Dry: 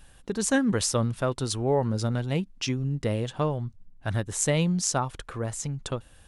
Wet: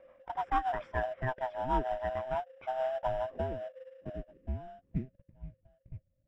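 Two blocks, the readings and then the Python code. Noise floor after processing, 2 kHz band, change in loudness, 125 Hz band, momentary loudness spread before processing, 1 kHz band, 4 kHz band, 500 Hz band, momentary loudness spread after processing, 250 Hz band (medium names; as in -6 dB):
-76 dBFS, -7.5 dB, -8.0 dB, -15.0 dB, 10 LU, +1.0 dB, -20.5 dB, -6.0 dB, 19 LU, -16.0 dB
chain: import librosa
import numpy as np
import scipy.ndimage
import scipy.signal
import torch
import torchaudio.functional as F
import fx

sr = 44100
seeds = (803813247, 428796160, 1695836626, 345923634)

p1 = fx.band_swap(x, sr, width_hz=500)
p2 = fx.rotary_switch(p1, sr, hz=6.7, then_hz=1.2, switch_at_s=2.6)
p3 = fx.filter_sweep_lowpass(p2, sr, from_hz=1700.0, to_hz=120.0, start_s=2.06, end_s=5.55, q=1.8)
p4 = fx.sample_hold(p3, sr, seeds[0], rate_hz=2300.0, jitter_pct=20)
p5 = p3 + F.gain(torch.from_numpy(p4), -10.0).numpy()
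p6 = scipy.signal.savgol_filter(p5, 25, 4, mode='constant')
y = F.gain(torch.from_numpy(p6), -7.0).numpy()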